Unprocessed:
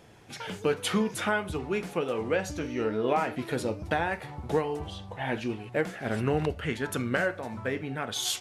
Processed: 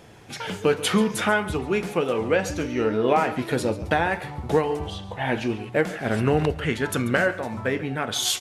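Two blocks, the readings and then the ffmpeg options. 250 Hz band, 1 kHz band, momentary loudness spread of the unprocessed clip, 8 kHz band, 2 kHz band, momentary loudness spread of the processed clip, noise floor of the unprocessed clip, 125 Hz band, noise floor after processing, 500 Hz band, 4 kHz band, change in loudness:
+6.0 dB, +6.0 dB, 6 LU, +6.0 dB, +6.0 dB, 6 LU, −45 dBFS, +6.0 dB, −39 dBFS, +6.0 dB, +6.0 dB, +6.0 dB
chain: -af "aecho=1:1:138:0.158,volume=6dB"

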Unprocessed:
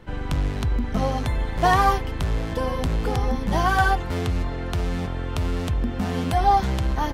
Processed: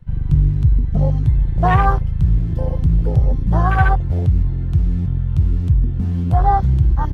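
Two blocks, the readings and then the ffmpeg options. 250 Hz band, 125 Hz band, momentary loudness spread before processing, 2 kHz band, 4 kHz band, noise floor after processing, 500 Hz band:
+3.5 dB, +10.5 dB, 8 LU, −0.5 dB, below −10 dB, −21 dBFS, −1.0 dB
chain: -af "lowshelf=frequency=180:width_type=q:width=3:gain=6.5,afwtdn=0.1,volume=2dB"

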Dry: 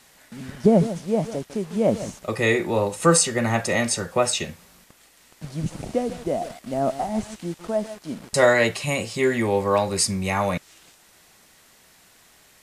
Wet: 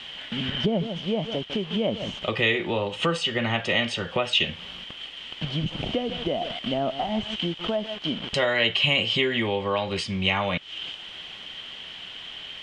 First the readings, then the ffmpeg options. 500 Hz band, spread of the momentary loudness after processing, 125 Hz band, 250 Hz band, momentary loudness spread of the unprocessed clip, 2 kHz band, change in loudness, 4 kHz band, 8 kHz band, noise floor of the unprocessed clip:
−5.5 dB, 15 LU, −3.5 dB, −4.0 dB, 13 LU, +0.5 dB, −3.0 dB, +8.0 dB, −19.5 dB, −55 dBFS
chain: -af "acompressor=threshold=-36dB:ratio=3,lowpass=frequency=3100:width_type=q:width=15,volume=8dB"

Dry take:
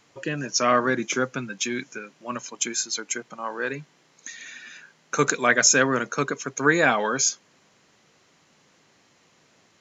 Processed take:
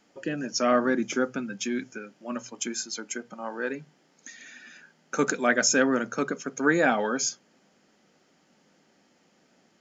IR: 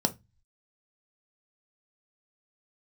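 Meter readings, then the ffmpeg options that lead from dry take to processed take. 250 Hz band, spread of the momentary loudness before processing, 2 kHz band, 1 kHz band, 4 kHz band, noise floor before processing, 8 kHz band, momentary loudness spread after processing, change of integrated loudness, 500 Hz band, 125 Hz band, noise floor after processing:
+1.0 dB, 20 LU, −4.5 dB, −4.5 dB, −5.0 dB, −61 dBFS, can't be measured, 18 LU, −3.5 dB, −1.5 dB, −7.0 dB, −65 dBFS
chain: -filter_complex "[0:a]asplit=2[link_01][link_02];[1:a]atrim=start_sample=2205,lowpass=3800[link_03];[link_02][link_03]afir=irnorm=-1:irlink=0,volume=-13dB[link_04];[link_01][link_04]amix=inputs=2:normalize=0,volume=-6.5dB"

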